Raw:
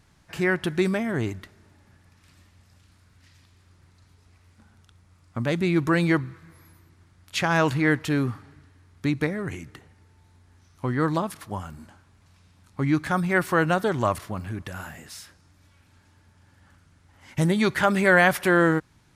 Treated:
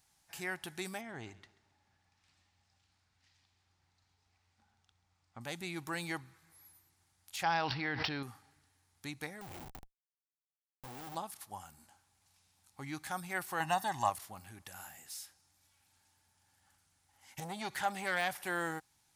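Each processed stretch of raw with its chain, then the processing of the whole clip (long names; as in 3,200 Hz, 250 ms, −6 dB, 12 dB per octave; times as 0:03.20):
0:01.01–0:05.41: high-frequency loss of the air 120 metres + repeating echo 135 ms, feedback 35%, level −19.5 dB
0:07.43–0:08.23: bad sample-rate conversion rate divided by 4×, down none, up filtered + envelope flattener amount 100%
0:09.41–0:11.15: high-shelf EQ 3,600 Hz −5.5 dB + leveller curve on the samples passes 1 + comparator with hysteresis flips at −40.5 dBFS
0:13.60–0:14.10: parametric band 1,000 Hz +4.5 dB 2.4 octaves + comb filter 1.1 ms, depth 82%
0:17.40–0:18.36: upward compression, threshold −20 dBFS + high-shelf EQ 9,100 Hz −9 dB + saturating transformer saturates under 1,000 Hz
whole clip: first-order pre-emphasis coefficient 0.9; de-essing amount 75%; parametric band 800 Hz +13.5 dB 0.33 octaves; level −2 dB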